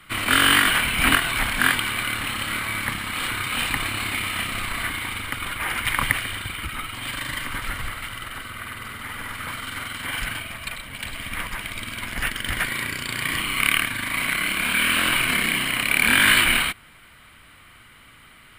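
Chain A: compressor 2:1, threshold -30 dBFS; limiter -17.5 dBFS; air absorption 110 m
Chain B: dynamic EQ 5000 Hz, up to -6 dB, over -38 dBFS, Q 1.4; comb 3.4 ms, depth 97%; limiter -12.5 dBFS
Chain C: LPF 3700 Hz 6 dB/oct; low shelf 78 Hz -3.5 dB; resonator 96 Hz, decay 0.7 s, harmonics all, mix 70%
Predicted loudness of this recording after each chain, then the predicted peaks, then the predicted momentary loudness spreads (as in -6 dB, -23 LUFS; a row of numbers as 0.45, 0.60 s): -31.0, -23.5, -32.0 LUFS; -18.0, -12.5, -12.5 dBFS; 8, 9, 15 LU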